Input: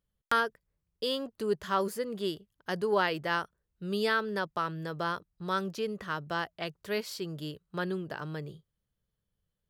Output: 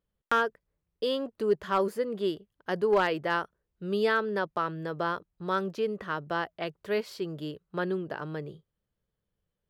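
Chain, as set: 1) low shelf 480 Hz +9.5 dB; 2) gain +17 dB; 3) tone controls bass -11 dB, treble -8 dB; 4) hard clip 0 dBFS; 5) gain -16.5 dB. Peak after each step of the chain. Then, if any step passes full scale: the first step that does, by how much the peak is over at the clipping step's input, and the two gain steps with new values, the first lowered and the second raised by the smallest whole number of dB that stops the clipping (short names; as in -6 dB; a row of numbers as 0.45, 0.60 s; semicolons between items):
-12.0, +5.0, +5.0, 0.0, -16.5 dBFS; step 2, 5.0 dB; step 2 +12 dB, step 5 -11.5 dB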